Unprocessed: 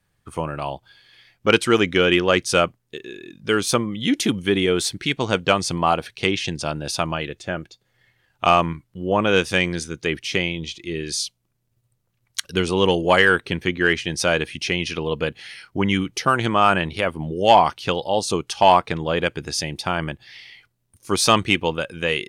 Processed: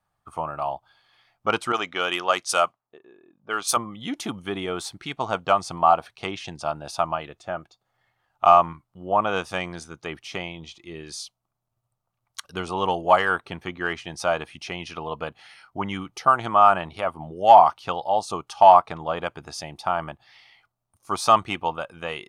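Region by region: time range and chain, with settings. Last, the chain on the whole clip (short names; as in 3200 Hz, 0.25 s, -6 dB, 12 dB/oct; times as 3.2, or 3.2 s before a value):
1.72–3.77 RIAA curve recording + low-pass opened by the level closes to 630 Hz, open at -11.5 dBFS
whole clip: band shelf 910 Hz +13.5 dB 1.3 oct; notch 1000 Hz, Q 18; gain -10.5 dB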